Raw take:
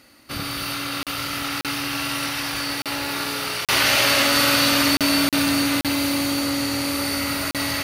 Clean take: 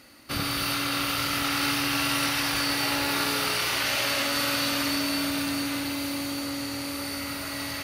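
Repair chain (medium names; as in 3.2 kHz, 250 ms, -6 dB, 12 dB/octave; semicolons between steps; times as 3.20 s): interpolate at 1.03/1.61/2.82/3.65/4.97/5.29/5.81/7.51 s, 37 ms; gain correction -8.5 dB, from 3.66 s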